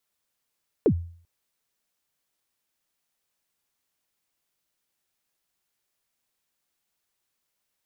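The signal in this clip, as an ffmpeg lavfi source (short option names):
-f lavfi -i "aevalsrc='0.224*pow(10,-3*t/0.5)*sin(2*PI*(510*0.074/log(85/510)*(exp(log(85/510)*min(t,0.074)/0.074)-1)+85*max(t-0.074,0)))':d=0.39:s=44100"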